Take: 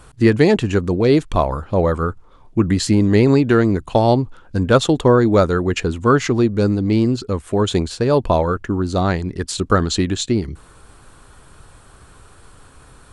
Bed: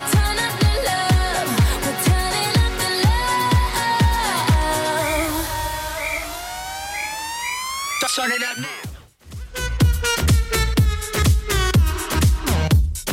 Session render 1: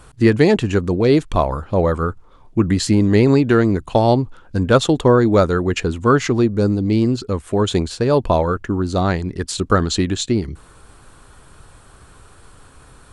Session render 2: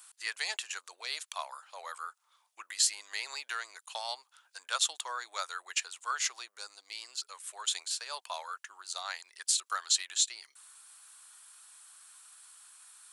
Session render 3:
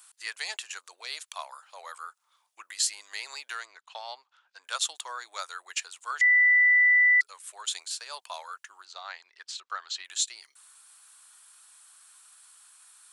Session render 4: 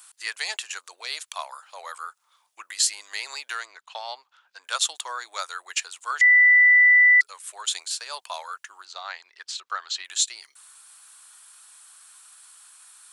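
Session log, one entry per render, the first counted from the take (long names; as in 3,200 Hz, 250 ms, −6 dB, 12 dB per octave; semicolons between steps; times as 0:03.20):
0:06.44–0:07.01: parametric band 4,100 Hz → 970 Hz −6 dB 1.4 octaves
high-pass filter 760 Hz 24 dB per octave; first difference
0:03.65–0:04.64: high-frequency loss of the air 160 metres; 0:06.21–0:07.21: beep over 1,980 Hz −16.5 dBFS; 0:08.85–0:10.05: high-frequency loss of the air 170 metres
level +5 dB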